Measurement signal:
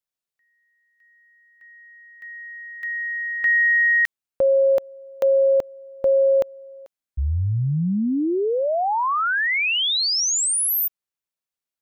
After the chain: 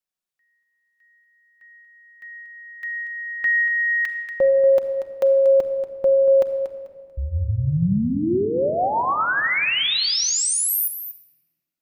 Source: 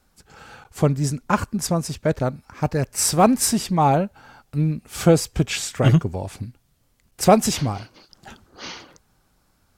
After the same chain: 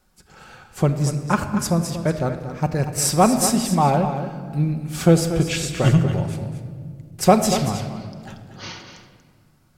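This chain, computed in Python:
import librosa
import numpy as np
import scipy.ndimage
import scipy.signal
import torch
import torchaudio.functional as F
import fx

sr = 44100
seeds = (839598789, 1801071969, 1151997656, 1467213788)

y = x + 10.0 ** (-10.5 / 20.0) * np.pad(x, (int(236 * sr / 1000.0), 0))[:len(x)]
y = fx.room_shoebox(y, sr, seeds[0], volume_m3=3500.0, walls='mixed', distance_m=1.0)
y = y * librosa.db_to_amplitude(-1.0)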